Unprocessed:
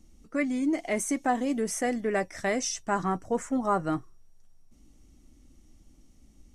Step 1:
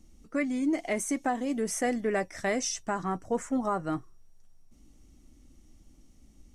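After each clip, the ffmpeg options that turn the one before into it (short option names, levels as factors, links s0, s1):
-af "alimiter=limit=0.119:level=0:latency=1:release=485"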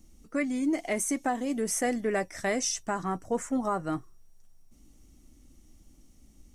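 -af "highshelf=f=9400:g=9"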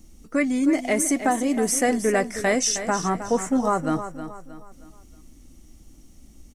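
-af "aecho=1:1:314|628|942|1256:0.282|0.11|0.0429|0.0167,volume=2.24"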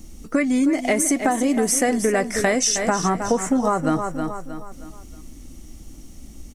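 -af "acompressor=threshold=0.0562:ratio=6,volume=2.66"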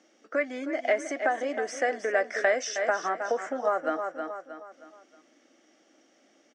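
-af "highpass=f=390:w=0.5412,highpass=f=390:w=1.3066,equalizer=f=410:t=q:w=4:g=-4,equalizer=f=610:t=q:w=4:g=5,equalizer=f=970:t=q:w=4:g=-8,equalizer=f=1600:t=q:w=4:g=7,equalizer=f=2600:t=q:w=4:g=-4,equalizer=f=4100:t=q:w=4:g=-10,lowpass=f=4700:w=0.5412,lowpass=f=4700:w=1.3066,volume=0.562"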